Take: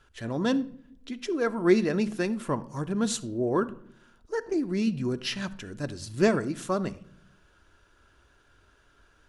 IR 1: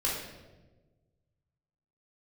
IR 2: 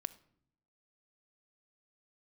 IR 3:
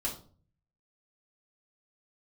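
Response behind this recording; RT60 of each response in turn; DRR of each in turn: 2; 1.2, 0.65, 0.45 s; -7.0, 11.0, -3.5 dB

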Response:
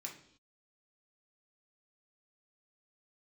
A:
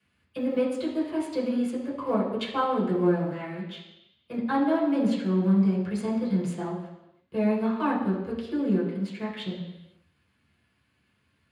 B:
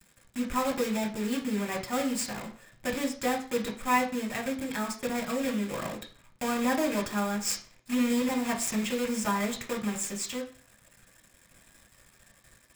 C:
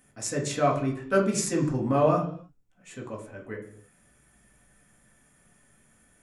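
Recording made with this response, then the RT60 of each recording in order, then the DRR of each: C; not exponential, 0.40 s, not exponential; -7.0, 1.0, -1.0 dB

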